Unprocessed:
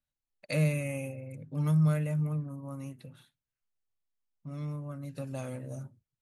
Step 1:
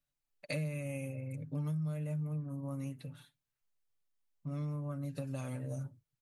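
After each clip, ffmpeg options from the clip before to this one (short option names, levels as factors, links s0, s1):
-af "aecho=1:1:6.9:0.5,acompressor=threshold=0.0178:ratio=6"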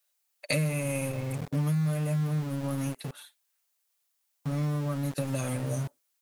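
-filter_complex "[0:a]highshelf=f=5000:g=9.5,acrossover=split=450|3900[s0][s1][s2];[s0]aeval=exprs='val(0)*gte(abs(val(0)),0.00631)':c=same[s3];[s3][s1][s2]amix=inputs=3:normalize=0,volume=2.66"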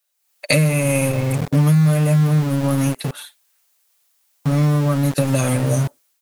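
-af "dynaudnorm=f=100:g=5:m=3.55,volume=1.26"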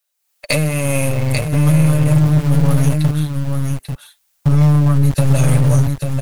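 -af "aecho=1:1:841:0.501,asubboost=boost=11:cutoff=93,aeval=exprs='0.891*(cos(1*acos(clip(val(0)/0.891,-1,1)))-cos(1*PI/2))+0.0631*(cos(8*acos(clip(val(0)/0.891,-1,1)))-cos(8*PI/2))':c=same,volume=0.891"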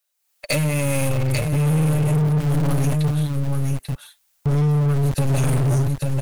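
-af "asoftclip=type=hard:threshold=0.2,volume=0.841"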